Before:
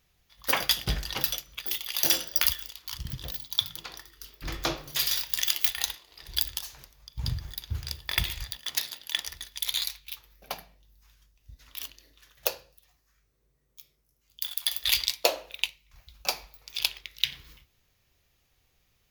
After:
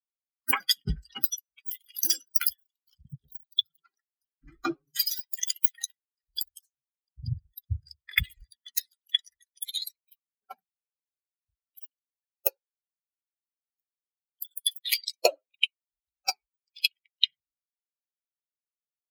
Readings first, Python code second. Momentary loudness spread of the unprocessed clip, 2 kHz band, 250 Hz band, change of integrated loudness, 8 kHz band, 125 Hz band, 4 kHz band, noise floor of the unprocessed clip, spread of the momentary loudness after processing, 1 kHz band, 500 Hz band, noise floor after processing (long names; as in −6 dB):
16 LU, −0.5 dB, +1.5 dB, 0.0 dB, −1.0 dB, −1.0 dB, −1.5 dB, −71 dBFS, 14 LU, −1.0 dB, +1.0 dB, below −85 dBFS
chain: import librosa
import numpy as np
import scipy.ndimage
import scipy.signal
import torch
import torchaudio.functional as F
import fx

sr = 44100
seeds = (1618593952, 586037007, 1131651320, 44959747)

y = fx.bin_expand(x, sr, power=3.0)
y = fx.rider(y, sr, range_db=3, speed_s=0.5)
y = fx.notch_comb(y, sr, f0_hz=900.0)
y = y * 10.0 ** (8.5 / 20.0)